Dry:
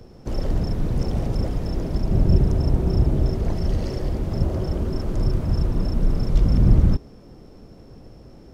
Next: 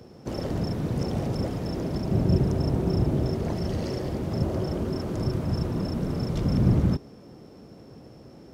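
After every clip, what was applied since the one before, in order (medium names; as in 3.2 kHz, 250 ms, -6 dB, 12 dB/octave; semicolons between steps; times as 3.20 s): high-pass 110 Hz 12 dB/octave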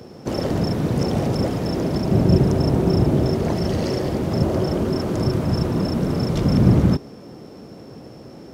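bass shelf 83 Hz -8.5 dB; trim +8.5 dB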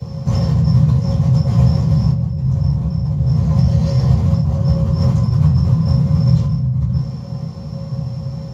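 compressor with a negative ratio -26 dBFS, ratio -1; reverberation RT60 0.35 s, pre-delay 3 ms, DRR -12.5 dB; trim -15.5 dB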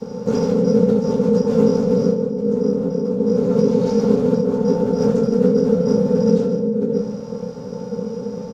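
ring modulator 340 Hz; delay 142 ms -13.5 dB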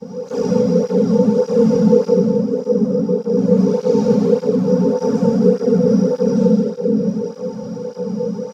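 plate-style reverb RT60 2.4 s, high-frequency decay 0.95×, DRR -6 dB; cancelling through-zero flanger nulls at 1.7 Hz, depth 3.1 ms; trim -2.5 dB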